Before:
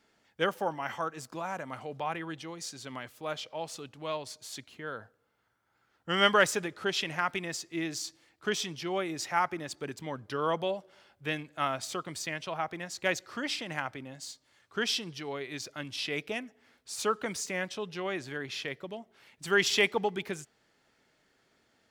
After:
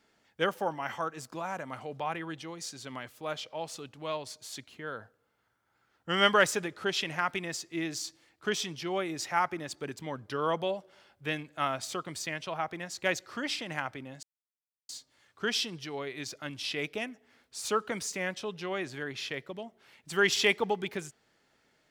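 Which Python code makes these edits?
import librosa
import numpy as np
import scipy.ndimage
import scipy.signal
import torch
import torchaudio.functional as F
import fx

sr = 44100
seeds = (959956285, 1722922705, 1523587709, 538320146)

y = fx.edit(x, sr, fx.insert_silence(at_s=14.23, length_s=0.66), tone=tone)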